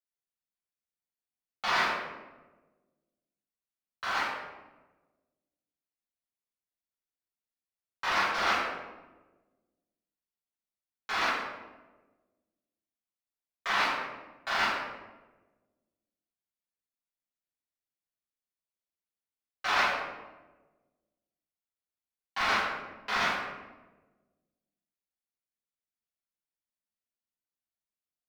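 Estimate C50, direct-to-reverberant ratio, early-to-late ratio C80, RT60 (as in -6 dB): -1.0 dB, -13.0 dB, 2.5 dB, 1.2 s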